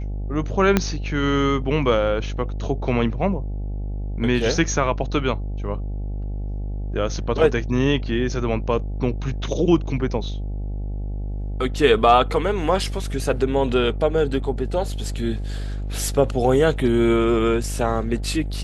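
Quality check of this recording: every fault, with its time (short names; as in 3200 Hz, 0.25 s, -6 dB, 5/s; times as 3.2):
buzz 50 Hz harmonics 17 -27 dBFS
0.77 pop -3 dBFS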